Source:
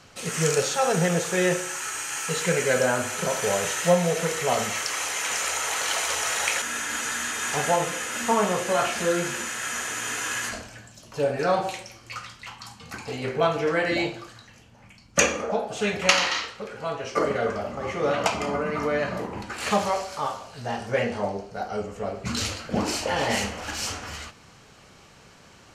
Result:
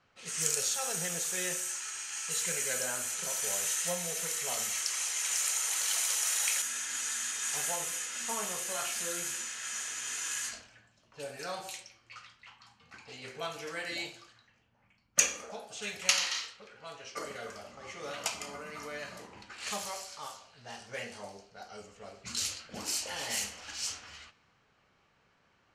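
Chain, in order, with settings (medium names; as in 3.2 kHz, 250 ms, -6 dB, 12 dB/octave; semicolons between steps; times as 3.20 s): level-controlled noise filter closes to 1.5 kHz, open at -23 dBFS; pre-emphasis filter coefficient 0.9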